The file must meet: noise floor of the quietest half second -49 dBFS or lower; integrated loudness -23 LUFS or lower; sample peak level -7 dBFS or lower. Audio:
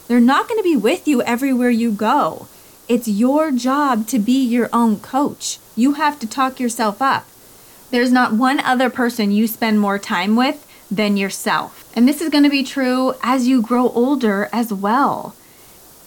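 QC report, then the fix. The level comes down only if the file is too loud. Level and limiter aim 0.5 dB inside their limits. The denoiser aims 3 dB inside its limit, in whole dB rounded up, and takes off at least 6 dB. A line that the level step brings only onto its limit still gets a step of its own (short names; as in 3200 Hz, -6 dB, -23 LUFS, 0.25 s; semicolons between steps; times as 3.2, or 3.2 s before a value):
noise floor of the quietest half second -45 dBFS: fail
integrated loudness -17.0 LUFS: fail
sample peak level -5.0 dBFS: fail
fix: gain -6.5 dB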